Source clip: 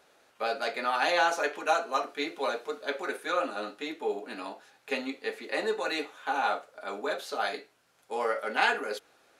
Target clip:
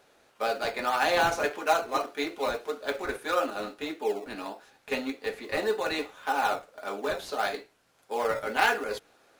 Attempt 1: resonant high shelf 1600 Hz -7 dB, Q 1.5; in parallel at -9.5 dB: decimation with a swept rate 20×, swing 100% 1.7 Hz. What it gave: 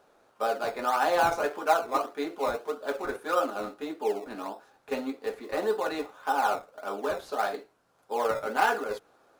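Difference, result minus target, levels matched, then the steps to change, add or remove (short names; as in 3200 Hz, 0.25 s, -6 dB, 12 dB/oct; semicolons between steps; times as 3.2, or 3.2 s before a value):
4000 Hz band -5.5 dB
remove: resonant high shelf 1600 Hz -7 dB, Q 1.5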